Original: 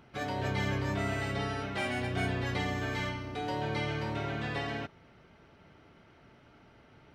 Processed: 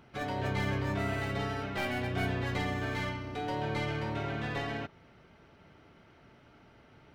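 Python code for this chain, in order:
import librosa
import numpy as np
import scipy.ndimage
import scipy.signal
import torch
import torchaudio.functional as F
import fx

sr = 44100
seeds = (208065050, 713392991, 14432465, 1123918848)

y = fx.tracing_dist(x, sr, depth_ms=0.057)
y = fx.dynamic_eq(y, sr, hz=8300.0, q=0.75, threshold_db=-57.0, ratio=4.0, max_db=-6)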